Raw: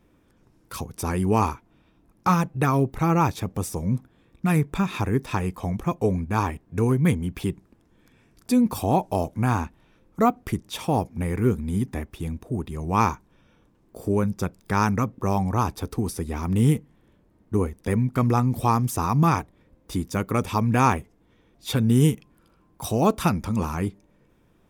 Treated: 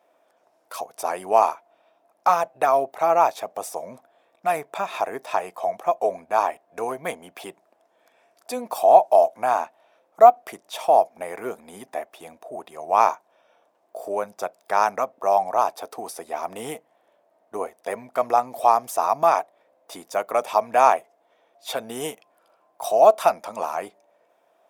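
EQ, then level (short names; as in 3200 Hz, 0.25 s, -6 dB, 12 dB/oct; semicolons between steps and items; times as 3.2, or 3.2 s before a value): resonant high-pass 660 Hz, resonance Q 7.3; -1.5 dB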